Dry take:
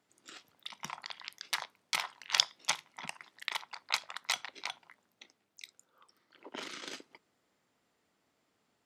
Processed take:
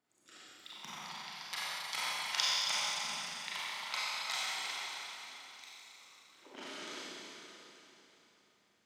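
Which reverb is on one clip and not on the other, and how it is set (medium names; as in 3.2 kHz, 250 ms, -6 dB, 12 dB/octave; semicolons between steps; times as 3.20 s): Schroeder reverb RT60 3.5 s, combs from 30 ms, DRR -9 dB; trim -9.5 dB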